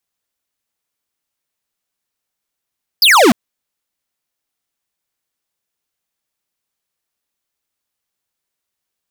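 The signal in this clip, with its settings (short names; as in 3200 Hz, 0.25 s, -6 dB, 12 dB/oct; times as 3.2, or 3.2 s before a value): laser zap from 5200 Hz, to 200 Hz, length 0.30 s square, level -8 dB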